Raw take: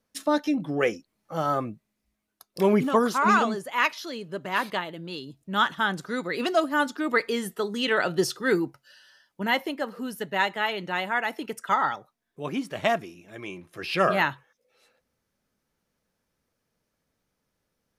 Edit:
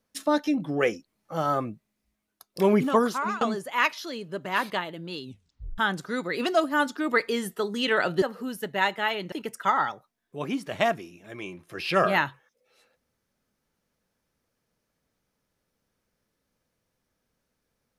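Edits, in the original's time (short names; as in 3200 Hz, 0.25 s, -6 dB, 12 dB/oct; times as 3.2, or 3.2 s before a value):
3.01–3.41 fade out, to -21 dB
5.23 tape stop 0.55 s
8.22–9.8 cut
10.9–11.36 cut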